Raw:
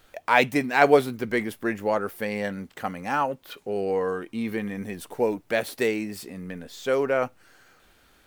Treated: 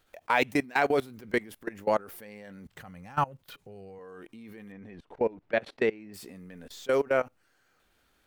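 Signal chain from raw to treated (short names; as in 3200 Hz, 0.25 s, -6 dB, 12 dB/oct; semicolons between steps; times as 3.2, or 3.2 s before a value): 2.66–3.99 resonant low shelf 190 Hz +10 dB, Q 1.5; 4.72–6.14 LPF 2800 Hz 12 dB/oct; level quantiser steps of 23 dB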